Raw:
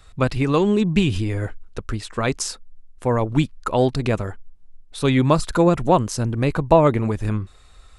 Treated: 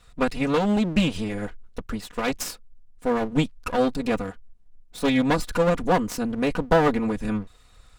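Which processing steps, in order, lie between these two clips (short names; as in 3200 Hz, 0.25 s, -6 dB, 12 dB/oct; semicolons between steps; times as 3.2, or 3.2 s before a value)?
minimum comb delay 4.1 ms; gain -3 dB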